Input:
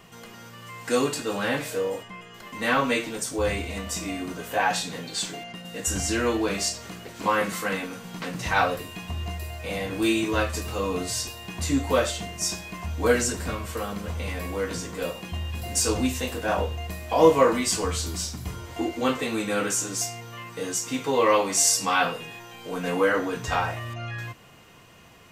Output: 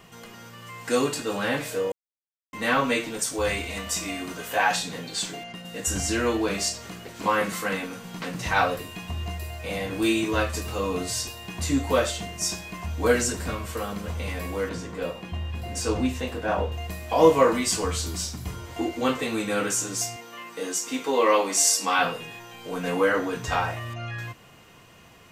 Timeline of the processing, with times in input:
1.92–2.53 s: mute
3.19–4.76 s: tilt shelf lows -3.5 dB, about 650 Hz
14.69–16.72 s: treble shelf 4.6 kHz -12 dB
20.16–21.99 s: high-pass 210 Hz 24 dB/octave

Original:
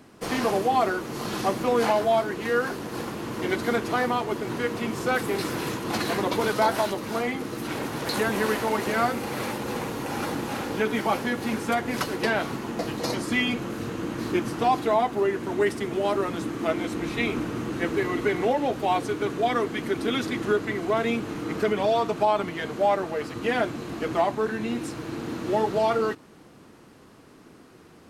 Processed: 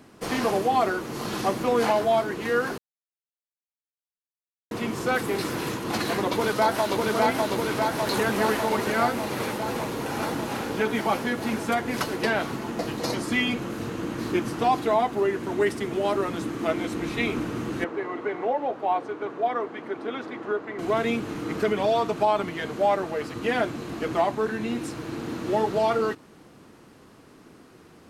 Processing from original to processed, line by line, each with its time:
2.78–4.71 s: mute
6.29–7.04 s: echo throw 600 ms, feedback 75%, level -1.5 dB
17.84–20.79 s: band-pass filter 780 Hz, Q 0.95

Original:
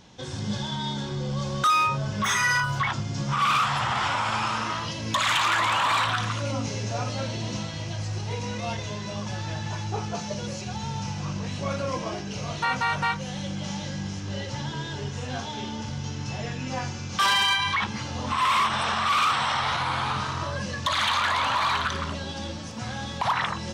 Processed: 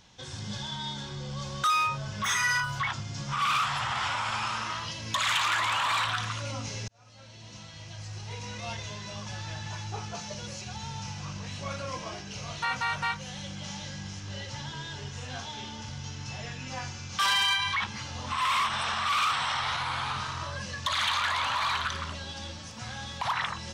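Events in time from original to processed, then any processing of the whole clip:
6.88–8.70 s: fade in
whole clip: peaking EQ 300 Hz -9 dB 2.8 oct; trim -2 dB

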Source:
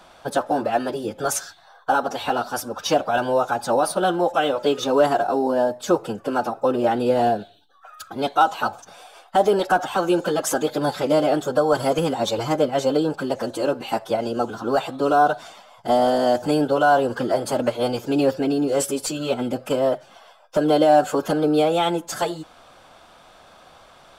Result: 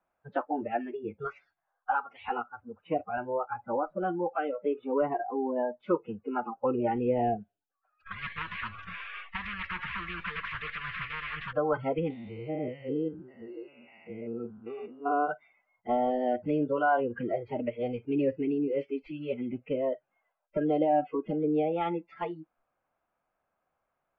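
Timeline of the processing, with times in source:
2.42–5.56 s: distance through air 420 m
6.64–7.36 s: bass shelf 110 Hz +8.5 dB
8.06–11.53 s: spectrum-flattening compressor 10:1
12.10–15.31 s: spectrogram pixelated in time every 200 ms
20.67–21.81 s: peaking EQ 1.8 kHz -4 dB 1.8 oct
whole clip: steep low-pass 2.5 kHz 36 dB/octave; spectral noise reduction 24 dB; dynamic bell 620 Hz, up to -3 dB, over -31 dBFS, Q 4.1; trim -7.5 dB

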